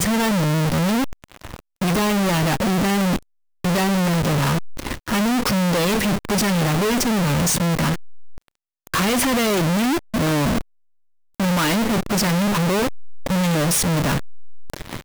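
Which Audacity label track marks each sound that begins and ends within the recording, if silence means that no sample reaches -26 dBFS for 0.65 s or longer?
8.870000	10.610000	sound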